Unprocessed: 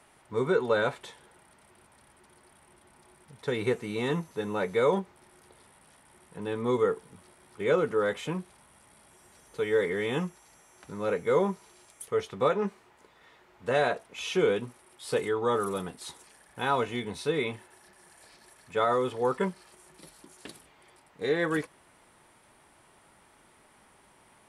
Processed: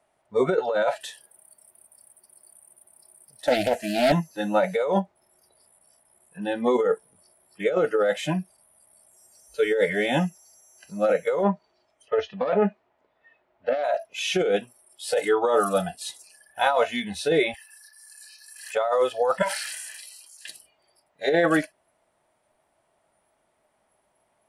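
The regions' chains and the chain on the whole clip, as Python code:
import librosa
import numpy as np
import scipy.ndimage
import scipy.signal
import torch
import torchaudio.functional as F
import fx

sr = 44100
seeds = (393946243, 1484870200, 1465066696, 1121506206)

y = fx.chain(x, sr, fx.highpass(hz=74.0, slope=12),
    fx.high_shelf(hz=8700.0, db=11.5),
    fx.doppler_dist(depth_ms=0.61), at=(1.0, 4.12))
y = fx.chain(y, sr, fx.self_delay(depth_ms=0.12),
    fx.lowpass(hz=3700.0, slope=12),
    fx.peak_eq(hz=270.0, db=6.0, octaves=0.25), at=(11.43, 13.84))
y = fx.chain(y, sr, fx.highpass(hz=960.0, slope=24),
    fx.high_shelf(hz=3800.0, db=4.5),
    fx.pre_swell(db_per_s=52.0), at=(17.54, 18.75))
y = fx.chain(y, sr, fx.highpass(hz=1100.0, slope=12),
    fx.sustainer(db_per_s=25.0), at=(19.42, 20.49))
y = fx.noise_reduce_blind(y, sr, reduce_db=21)
y = fx.peak_eq(y, sr, hz=640.0, db=13.0, octaves=0.5)
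y = fx.over_compress(y, sr, threshold_db=-25.0, ratio=-1.0)
y = F.gain(torch.from_numpy(y), 4.5).numpy()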